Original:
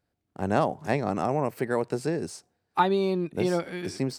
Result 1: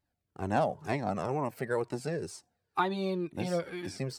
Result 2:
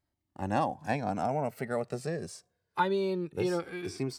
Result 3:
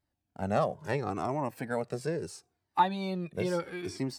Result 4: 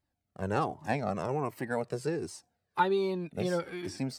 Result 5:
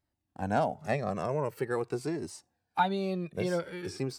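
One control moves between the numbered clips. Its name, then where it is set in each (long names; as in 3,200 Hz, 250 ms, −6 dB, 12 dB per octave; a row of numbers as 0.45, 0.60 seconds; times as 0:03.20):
flanger whose copies keep moving one way, speed: 2.1, 0.22, 0.75, 1.3, 0.45 Hertz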